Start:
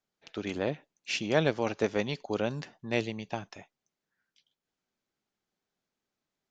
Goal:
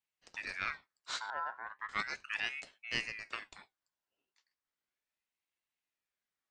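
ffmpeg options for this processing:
ffmpeg -i in.wav -filter_complex "[0:a]flanger=delay=6.7:depth=7:regen=-72:speed=1.1:shape=triangular,asettb=1/sr,asplit=3[link_01][link_02][link_03];[link_01]atrim=end=1.304[link_04];[link_02]atrim=start=1.3:end=1.89,asetpts=PTS-STARTPTS,afade=type=in:duration=0.004:curve=qsin,afade=type=out:start_time=0.586:duration=0.004:curve=qsin,bandpass=frequency=170:width_type=q:width=1.4:csg=0[link_05];[link_03]atrim=start=1.886[link_06];[link_04][link_05]acrossfade=duration=0.004:curve1=hsin:curve2=qsin[link_07];[link_07][link_06]acrossfade=duration=0.004:curve1=qsin:curve2=hsin,aeval=exprs='val(0)*sin(2*PI*1800*n/s+1800*0.35/0.36*sin(2*PI*0.36*n/s))':channel_layout=same" out.wav

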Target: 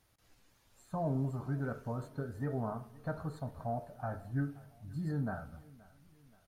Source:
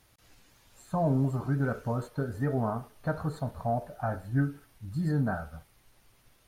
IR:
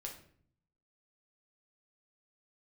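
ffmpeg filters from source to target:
-filter_complex "[0:a]aecho=1:1:525|1050|1575:0.075|0.036|0.0173,asplit=2[link_01][link_02];[1:a]atrim=start_sample=2205,asetrate=29547,aresample=44100,lowpass=frequency=3100:width=0.5412,lowpass=frequency=3100:width=1.3066[link_03];[link_02][link_03]afir=irnorm=-1:irlink=0,volume=-13dB[link_04];[link_01][link_04]amix=inputs=2:normalize=0,volume=-8.5dB"

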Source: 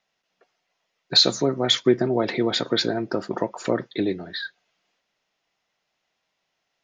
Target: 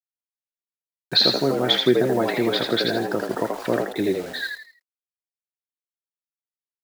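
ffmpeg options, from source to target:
ffmpeg -i in.wav -filter_complex "[0:a]lowpass=frequency=4500:width=0.5412,lowpass=frequency=4500:width=1.3066,equalizer=frequency=1600:width=4.9:gain=4,bandreject=frequency=284.9:width_type=h:width=4,bandreject=frequency=569.8:width_type=h:width=4,bandreject=frequency=854.7:width_type=h:width=4,acrusher=bits=6:mix=0:aa=0.000001,asplit=5[link_01][link_02][link_03][link_04][link_05];[link_02]adelay=81,afreqshift=77,volume=-4dB[link_06];[link_03]adelay=162,afreqshift=154,volume=-13.4dB[link_07];[link_04]adelay=243,afreqshift=231,volume=-22.7dB[link_08];[link_05]adelay=324,afreqshift=308,volume=-32.1dB[link_09];[link_01][link_06][link_07][link_08][link_09]amix=inputs=5:normalize=0" out.wav

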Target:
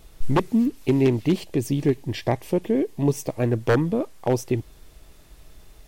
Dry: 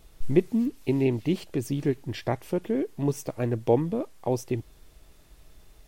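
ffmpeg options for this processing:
ffmpeg -i in.wav -filter_complex "[0:a]asettb=1/sr,asplit=3[link_01][link_02][link_03];[link_01]atrim=end=1.364[link_04];[link_02]atrim=start=1.36:end=3.41,asetpts=PTS-STARTPTS,afade=type=in:duration=0.004:curve=qsin,afade=type=out:start_time=2.046:duration=0.004:curve=qsin,equalizer=frequency=1400:width_type=o:width=0.27:gain=-10[link_05];[link_03]atrim=start=3.406[link_06];[link_04][link_05]acrossfade=duration=0.004:curve1=hsin:curve2=qsin[link_07];[link_07][link_06]acrossfade=duration=0.004:curve1=qsin:curve2=hsin,aeval=exprs='0.15*(abs(mod(val(0)/0.15+3,4)-2)-1)':channel_layout=same,volume=5dB" out.wav

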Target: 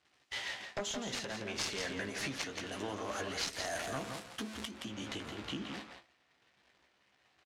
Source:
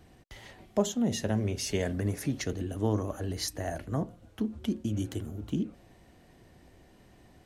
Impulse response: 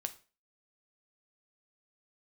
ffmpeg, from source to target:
-filter_complex "[0:a]aeval=exprs='val(0)+0.5*0.00944*sgn(val(0))':channel_layout=same,agate=range=-33dB:threshold=-42dB:ratio=16:detection=peak,acompressor=threshold=-31dB:ratio=10,highpass=frequency=130:poles=1,tiltshelf=frequency=710:gain=-10,asplit=2[link_01][link_02];[link_02]adelay=15,volume=-7dB[link_03];[link_01][link_03]amix=inputs=2:normalize=0,aeval=exprs='0.237*(cos(1*acos(clip(val(0)/0.237,-1,1)))-cos(1*PI/2))+0.075*(cos(7*acos(clip(val(0)/0.237,-1,1)))-cos(7*PI/2))':channel_layout=same,asetnsamples=nb_out_samples=441:pad=0,asendcmd='3.53 lowpass f 9000;4.71 lowpass f 3800',lowpass=5100,asplit=2[link_04][link_05];[link_05]adelay=169.1,volume=-6dB,highshelf=frequency=4000:gain=-3.8[link_06];[link_04][link_06]amix=inputs=2:normalize=0,alimiter=limit=-22.5dB:level=0:latency=1:release=382"

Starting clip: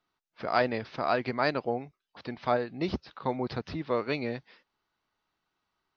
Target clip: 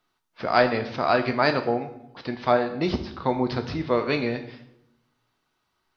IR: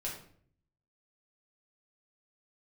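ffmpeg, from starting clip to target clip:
-filter_complex "[0:a]asplit=2[link_01][link_02];[1:a]atrim=start_sample=2205,asetrate=26901,aresample=44100,highshelf=frequency=4500:gain=9[link_03];[link_02][link_03]afir=irnorm=-1:irlink=0,volume=-9.5dB[link_04];[link_01][link_04]amix=inputs=2:normalize=0,volume=3.5dB"

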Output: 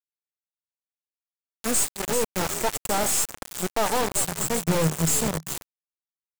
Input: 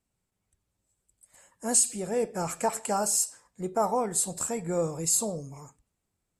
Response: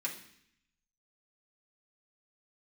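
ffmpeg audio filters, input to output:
-filter_complex "[0:a]asplit=2[link_01][link_02];[link_02]asplit=5[link_03][link_04][link_05][link_06][link_07];[link_03]adelay=387,afreqshift=-82,volume=-11.5dB[link_08];[link_04]adelay=774,afreqshift=-164,volume=-17.5dB[link_09];[link_05]adelay=1161,afreqshift=-246,volume=-23.5dB[link_10];[link_06]adelay=1548,afreqshift=-328,volume=-29.6dB[link_11];[link_07]adelay=1935,afreqshift=-410,volume=-35.6dB[link_12];[link_08][link_09][link_10][link_11][link_12]amix=inputs=5:normalize=0[link_13];[link_01][link_13]amix=inputs=2:normalize=0,acrusher=bits=4:mix=0:aa=0.000001,aeval=exprs='(tanh(22.4*val(0)+0.8)-tanh(0.8))/22.4':channel_layout=same,asettb=1/sr,asplit=3[link_14][link_15][link_16];[link_14]atrim=end=4.214[link_17];[link_15]atrim=start=4.21:end=5.49,asetpts=PTS-STARTPTS,afade=type=in:duration=0.004:curve=qsin,afade=type=out:start_time=1.276:duration=0.004:curve=qsin,equalizer=frequency=160:width=4:gain=12.5[link_18];[link_16]atrim=start=5.486[link_19];[link_17][link_18]acrossfade=duration=0.004:curve1=hsin:curve2=qsin[link_20];[link_20][link_19]acrossfade=duration=0.004:curve1=qsin:curve2=hsin,volume=7.5dB"

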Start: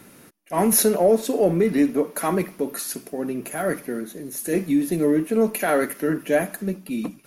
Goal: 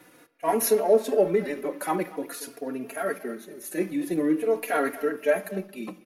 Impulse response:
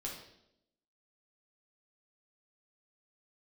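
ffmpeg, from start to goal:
-filter_complex "[0:a]bass=frequency=250:gain=-12,treble=frequency=4000:gain=-6,asplit=2[link_01][link_02];[link_02]adelay=280,highpass=300,lowpass=3400,asoftclip=type=hard:threshold=-17.5dB,volume=-17dB[link_03];[link_01][link_03]amix=inputs=2:normalize=0,atempo=1.2,asplit=2[link_04][link_05];[1:a]atrim=start_sample=2205[link_06];[link_05][link_06]afir=irnorm=-1:irlink=0,volume=-13.5dB[link_07];[link_04][link_07]amix=inputs=2:normalize=0,asplit=2[link_08][link_09];[link_09]adelay=3.6,afreqshift=-0.47[link_10];[link_08][link_10]amix=inputs=2:normalize=1"

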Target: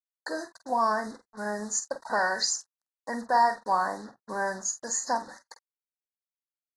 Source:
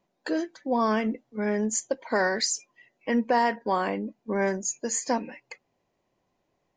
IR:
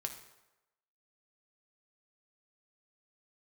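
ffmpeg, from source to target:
-filter_complex "[0:a]acrusher=bits=6:mix=0:aa=0.5,aeval=exprs='sgn(val(0))*max(abs(val(0))-0.0015,0)':channel_layout=same,asuperstop=centerf=2700:order=12:qfactor=1.3,lowshelf=frequency=570:width_type=q:width=1.5:gain=-9.5,asplit=2[link_01][link_02];[link_02]adelay=48,volume=-11dB[link_03];[link_01][link_03]amix=inputs=2:normalize=0" -ar 24000 -c:a aac -b:a 32k

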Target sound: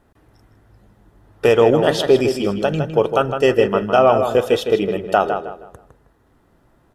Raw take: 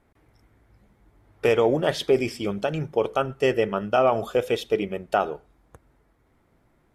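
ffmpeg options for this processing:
ffmpeg -i in.wav -filter_complex "[0:a]bandreject=frequency=2200:width=5.6,asplit=2[link_01][link_02];[link_02]adelay=158,lowpass=frequency=3500:poles=1,volume=-7dB,asplit=2[link_03][link_04];[link_04]adelay=158,lowpass=frequency=3500:poles=1,volume=0.32,asplit=2[link_05][link_06];[link_06]adelay=158,lowpass=frequency=3500:poles=1,volume=0.32,asplit=2[link_07][link_08];[link_08]adelay=158,lowpass=frequency=3500:poles=1,volume=0.32[link_09];[link_03][link_05][link_07][link_09]amix=inputs=4:normalize=0[link_10];[link_01][link_10]amix=inputs=2:normalize=0,volume=6.5dB" out.wav

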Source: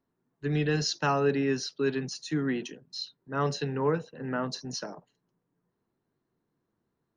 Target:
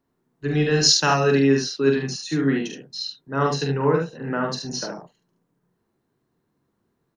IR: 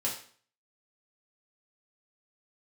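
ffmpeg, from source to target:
-filter_complex "[0:a]asettb=1/sr,asplit=3[link_01][link_02][link_03];[link_01]atrim=end=0.834[link_04];[link_02]atrim=start=0.83:end=1.4,asetpts=PTS-STARTPTS,afade=type=in:duration=0.004:curve=qsin,afade=type=out:start_time=0.566:duration=0.004:curve=qsin,aemphasis=mode=production:type=75kf[link_05];[link_03]atrim=start=1.396[link_06];[link_04][link_05]acrossfade=duration=0.004:curve1=hsin:curve2=qsin[link_07];[link_07][link_06]acrossfade=duration=0.004:curve1=qsin:curve2=hsin,aecho=1:1:44|73:0.562|0.596,volume=5dB"

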